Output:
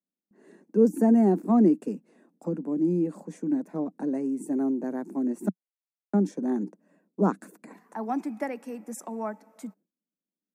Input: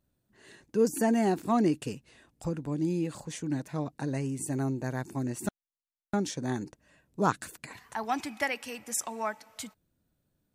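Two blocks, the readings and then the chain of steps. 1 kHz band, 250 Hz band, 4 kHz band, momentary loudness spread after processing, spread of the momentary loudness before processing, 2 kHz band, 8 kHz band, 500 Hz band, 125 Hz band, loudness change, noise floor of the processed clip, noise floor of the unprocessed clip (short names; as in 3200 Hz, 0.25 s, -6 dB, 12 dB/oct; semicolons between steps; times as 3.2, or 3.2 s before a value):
-1.5 dB, +6.5 dB, under -15 dB, 18 LU, 14 LU, -9.0 dB, under -10 dB, +4.0 dB, -0.5 dB, +4.5 dB, under -85 dBFS, under -85 dBFS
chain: steep high-pass 180 Hz 72 dB/oct; tilt shelf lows +9 dB, about 760 Hz; gate with hold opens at -58 dBFS; bell 3700 Hz -10 dB 1.3 oct; notch 3000 Hz, Q 13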